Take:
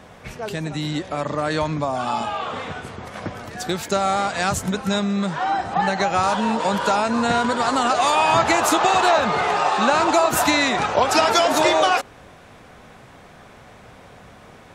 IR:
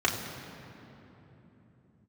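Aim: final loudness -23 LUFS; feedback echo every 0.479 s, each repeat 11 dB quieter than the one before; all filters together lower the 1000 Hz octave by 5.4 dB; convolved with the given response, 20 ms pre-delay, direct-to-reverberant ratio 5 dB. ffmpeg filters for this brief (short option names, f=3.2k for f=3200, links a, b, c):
-filter_complex "[0:a]equalizer=f=1k:t=o:g=-7.5,aecho=1:1:479|958|1437:0.282|0.0789|0.0221,asplit=2[a][b];[1:a]atrim=start_sample=2205,adelay=20[c];[b][c]afir=irnorm=-1:irlink=0,volume=-17.5dB[d];[a][d]amix=inputs=2:normalize=0,volume=-2dB"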